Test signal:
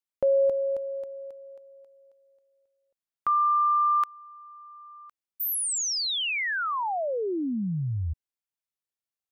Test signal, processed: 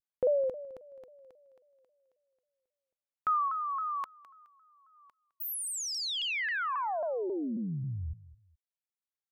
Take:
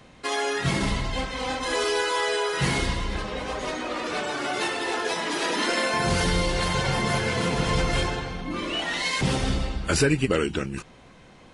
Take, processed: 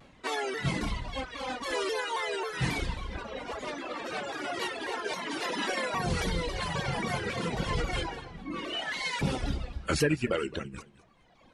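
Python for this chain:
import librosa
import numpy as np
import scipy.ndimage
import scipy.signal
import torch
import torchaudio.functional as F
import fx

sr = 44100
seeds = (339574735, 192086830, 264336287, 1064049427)

y = fx.dereverb_blind(x, sr, rt60_s=1.6)
y = fx.bass_treble(y, sr, bass_db=0, treble_db=-4)
y = fx.echo_feedback(y, sr, ms=213, feedback_pct=26, wet_db=-17.5)
y = fx.vibrato_shape(y, sr, shape='saw_down', rate_hz=3.7, depth_cents=160.0)
y = y * 10.0 ** (-4.0 / 20.0)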